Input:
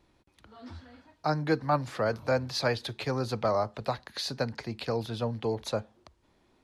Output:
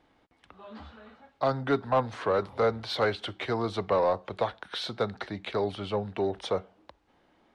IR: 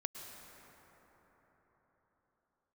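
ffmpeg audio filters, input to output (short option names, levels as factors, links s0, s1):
-filter_complex "[0:a]asplit=2[s0][s1];[s1]highpass=f=720:p=1,volume=3.98,asoftclip=type=tanh:threshold=0.2[s2];[s0][s2]amix=inputs=2:normalize=0,lowpass=f=1900:p=1,volume=0.501,asetrate=38808,aresample=44100"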